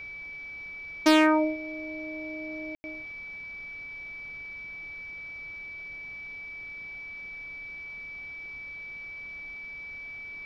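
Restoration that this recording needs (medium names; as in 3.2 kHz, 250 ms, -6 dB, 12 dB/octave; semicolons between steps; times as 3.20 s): clip repair -11.5 dBFS; band-stop 2.3 kHz, Q 30; room tone fill 2.75–2.84 s; noise reduction 30 dB, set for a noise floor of -41 dBFS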